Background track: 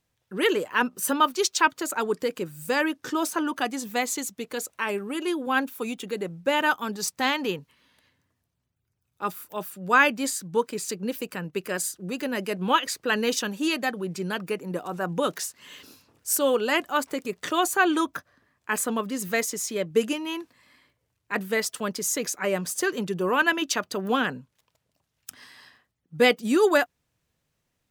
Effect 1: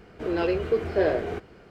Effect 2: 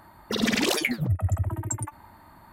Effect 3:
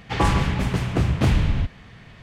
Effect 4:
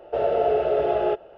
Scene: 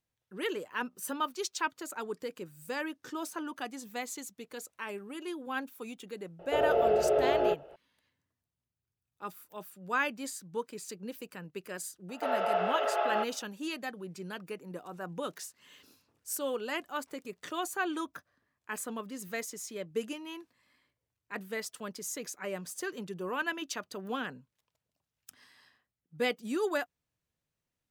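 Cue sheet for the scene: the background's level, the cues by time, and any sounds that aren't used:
background track -11.5 dB
6.39 add 4 -4.5 dB
12.09 add 4 -1 dB + resonant high-pass 1100 Hz, resonance Q 1.9
not used: 1, 2, 3

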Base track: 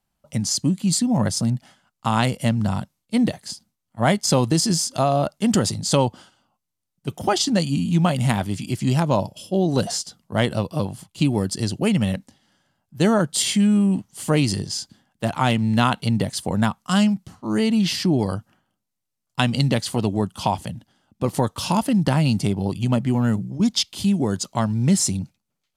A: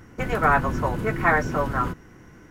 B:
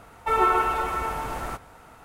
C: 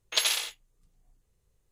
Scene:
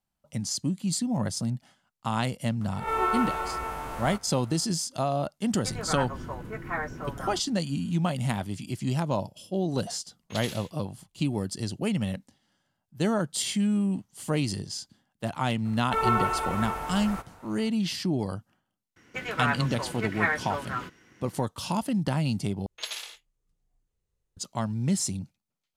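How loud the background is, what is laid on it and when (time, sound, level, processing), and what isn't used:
base track -8 dB
2.61 add B -6 dB + spectral swells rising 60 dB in 0.43 s
5.46 add A -12 dB
10.18 add C -13 dB
15.65 add B -4 dB
18.96 add A -10 dB + weighting filter D
22.66 replace with C -9 dB + high shelf 11000 Hz -8 dB

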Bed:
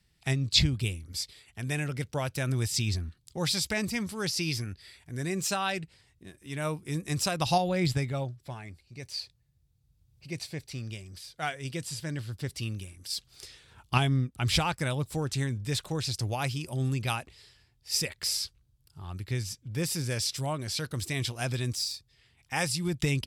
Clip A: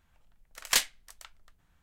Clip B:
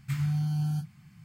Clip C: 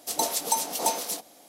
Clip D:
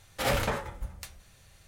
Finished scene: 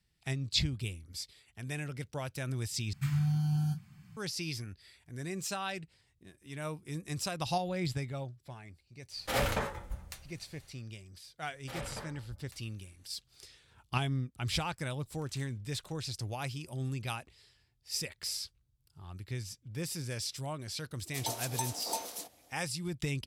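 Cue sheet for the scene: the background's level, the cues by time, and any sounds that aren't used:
bed -7 dB
2.93 replace with B -1.5 dB + notch 2100 Hz, Q 21
9.09 add D -3 dB, fades 0.10 s
11.49 add D -14.5 dB + spectral gate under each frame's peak -30 dB strong
14.64 add A -15.5 dB + compressor, threshold -43 dBFS
21.07 add C -10.5 dB

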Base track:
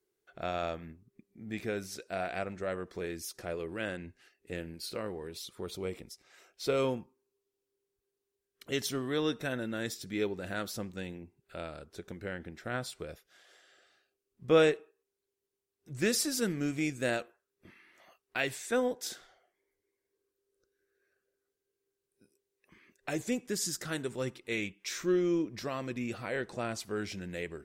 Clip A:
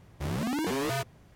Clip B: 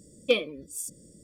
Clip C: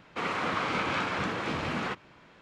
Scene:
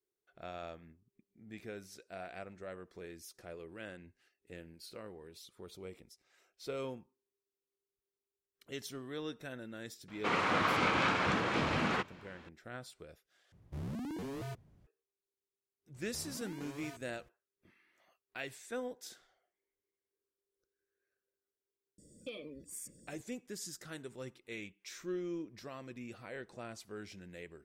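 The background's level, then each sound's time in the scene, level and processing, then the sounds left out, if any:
base track -10.5 dB
10.08 add C -0.5 dB
13.52 replace with A -18 dB + low shelf 450 Hz +11.5 dB
15.94 add A -9 dB + compressor, threshold -40 dBFS
21.98 add B -7.5 dB + compressor, threshold -33 dBFS

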